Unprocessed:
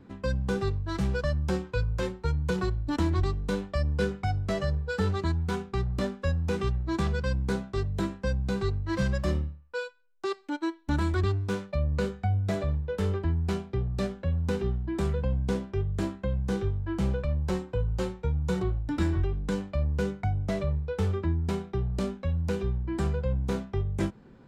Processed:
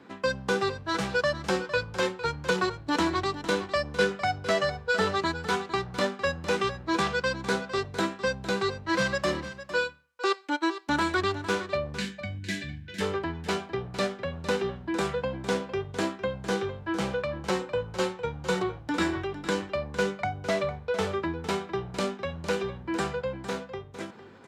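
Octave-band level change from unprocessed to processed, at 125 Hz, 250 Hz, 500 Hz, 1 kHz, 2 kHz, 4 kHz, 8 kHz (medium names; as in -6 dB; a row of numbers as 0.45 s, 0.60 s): -10.0 dB, -1.0 dB, +4.0 dB, +8.0 dB, +9.0 dB, +9.0 dB, +7.5 dB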